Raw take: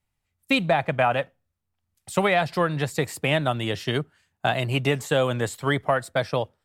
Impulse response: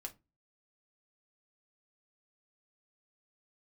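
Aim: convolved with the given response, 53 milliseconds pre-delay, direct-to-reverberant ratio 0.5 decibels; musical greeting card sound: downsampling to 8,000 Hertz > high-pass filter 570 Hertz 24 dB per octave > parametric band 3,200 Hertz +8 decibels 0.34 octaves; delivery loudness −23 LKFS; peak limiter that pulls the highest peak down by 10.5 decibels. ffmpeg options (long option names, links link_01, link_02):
-filter_complex "[0:a]alimiter=limit=-18.5dB:level=0:latency=1,asplit=2[link_01][link_02];[1:a]atrim=start_sample=2205,adelay=53[link_03];[link_02][link_03]afir=irnorm=-1:irlink=0,volume=3dB[link_04];[link_01][link_04]amix=inputs=2:normalize=0,aresample=8000,aresample=44100,highpass=frequency=570:width=0.5412,highpass=frequency=570:width=1.3066,equalizer=frequency=3200:width_type=o:width=0.34:gain=8,volume=6dB"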